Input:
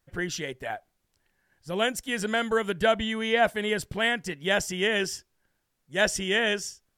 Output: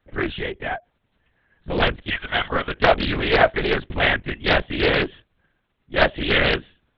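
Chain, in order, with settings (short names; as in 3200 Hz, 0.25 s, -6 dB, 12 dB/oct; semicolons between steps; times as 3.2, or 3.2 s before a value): 2.09–2.81 HPF 1200 Hz -> 470 Hz 12 dB/oct; LPC vocoder at 8 kHz whisper; Doppler distortion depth 0.53 ms; gain +6.5 dB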